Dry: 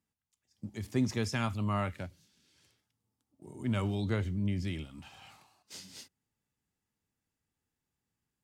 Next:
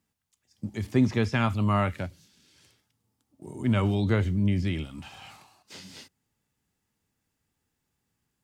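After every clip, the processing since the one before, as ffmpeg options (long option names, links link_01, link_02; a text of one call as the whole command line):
ffmpeg -i in.wav -filter_complex "[0:a]acrossover=split=3800[link_01][link_02];[link_02]acompressor=threshold=-58dB:ratio=4:attack=1:release=60[link_03];[link_01][link_03]amix=inputs=2:normalize=0,volume=7.5dB" out.wav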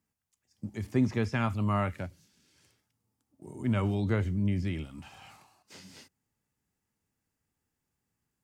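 ffmpeg -i in.wav -af "equalizer=frequency=3600:width=1.9:gain=-5,volume=-4dB" out.wav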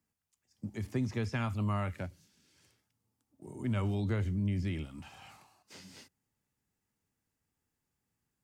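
ffmpeg -i in.wav -filter_complex "[0:a]acrossover=split=120|3000[link_01][link_02][link_03];[link_02]acompressor=threshold=-32dB:ratio=3[link_04];[link_01][link_04][link_03]amix=inputs=3:normalize=0,volume=-1.5dB" out.wav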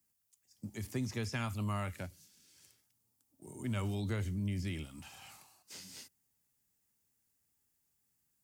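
ffmpeg -i in.wav -af "crystalizer=i=3:c=0,volume=-4dB" out.wav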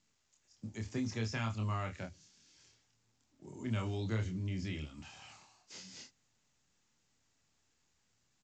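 ffmpeg -i in.wav -filter_complex "[0:a]asplit=2[link_01][link_02];[link_02]adelay=27,volume=-4dB[link_03];[link_01][link_03]amix=inputs=2:normalize=0,volume=-1.5dB" -ar 16000 -c:a pcm_mulaw out.wav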